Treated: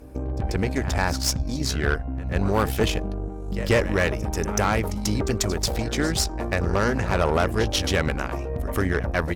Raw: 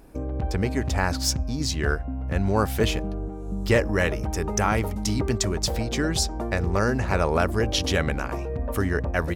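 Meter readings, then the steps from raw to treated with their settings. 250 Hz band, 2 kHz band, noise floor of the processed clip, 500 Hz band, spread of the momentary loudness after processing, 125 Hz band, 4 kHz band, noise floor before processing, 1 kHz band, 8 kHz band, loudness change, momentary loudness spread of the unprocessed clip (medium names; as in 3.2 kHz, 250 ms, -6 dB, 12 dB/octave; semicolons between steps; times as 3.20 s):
+0.5 dB, +1.0 dB, -32 dBFS, +1.0 dB, 7 LU, +0.5 dB, +0.5 dB, -32 dBFS, +1.0 dB, +0.5 dB, +0.5 dB, 7 LU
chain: reverse echo 140 ms -14.5 dB; Chebyshev shaper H 6 -19 dB, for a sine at -8 dBFS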